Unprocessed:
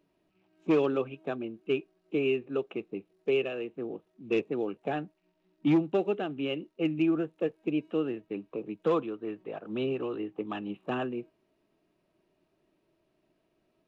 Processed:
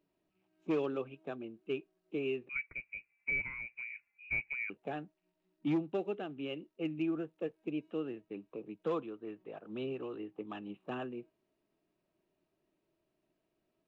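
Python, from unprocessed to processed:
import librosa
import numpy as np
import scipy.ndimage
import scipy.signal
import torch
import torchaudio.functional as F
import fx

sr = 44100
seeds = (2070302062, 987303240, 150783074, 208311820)

y = fx.freq_invert(x, sr, carrier_hz=2700, at=(2.49, 4.7))
y = y * librosa.db_to_amplitude(-8.0)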